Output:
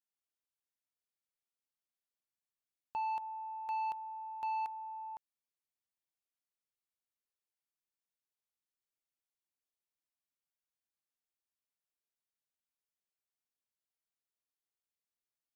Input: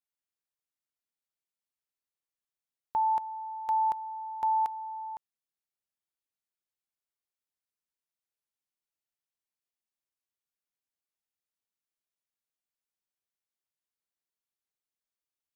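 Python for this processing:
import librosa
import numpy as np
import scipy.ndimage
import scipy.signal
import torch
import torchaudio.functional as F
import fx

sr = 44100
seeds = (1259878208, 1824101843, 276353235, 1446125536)

y = fx.low_shelf(x, sr, hz=310.0, db=11.5, at=(3.22, 3.68))
y = 10.0 ** (-27.0 / 20.0) * np.tanh(y / 10.0 ** (-27.0 / 20.0))
y = y * librosa.db_to_amplitude(-5.5)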